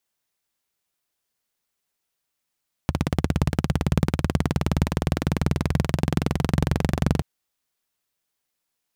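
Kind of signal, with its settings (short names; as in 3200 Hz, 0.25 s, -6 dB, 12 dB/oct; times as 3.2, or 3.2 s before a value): single-cylinder engine model, changing speed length 4.33 s, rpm 2000, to 2800, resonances 81/140 Hz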